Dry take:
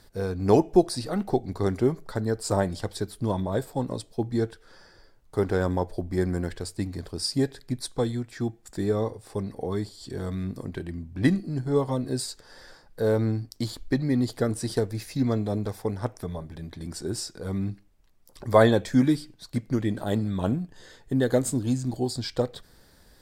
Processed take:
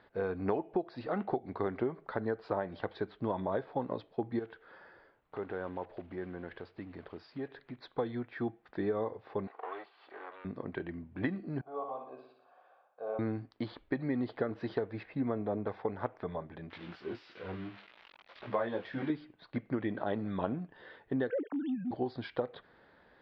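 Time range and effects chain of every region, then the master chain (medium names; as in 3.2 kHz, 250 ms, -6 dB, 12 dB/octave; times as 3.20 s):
4.39–7.82 s: block-companded coder 5-bit + compression 2:1, threshold -40 dBFS
9.47–10.45 s: comb filter that takes the minimum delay 2.6 ms + high-pass 820 Hz + treble shelf 4 kHz -8 dB
11.61–13.19 s: vowel filter a + flutter echo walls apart 10.3 m, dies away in 0.67 s
15.03–15.67 s: low-pass 3.9 kHz + treble shelf 2.5 kHz -8 dB
16.70–19.10 s: zero-crossing glitches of -21 dBFS + detune thickener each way 23 cents
21.30–21.91 s: formants replaced by sine waves + compression 5:1, threshold -23 dBFS + transient shaper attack -4 dB, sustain +3 dB
whole clip: high-pass 610 Hz 6 dB/octave; compression 12:1, threshold -31 dBFS; Bessel low-pass 1.9 kHz, order 8; trim +3 dB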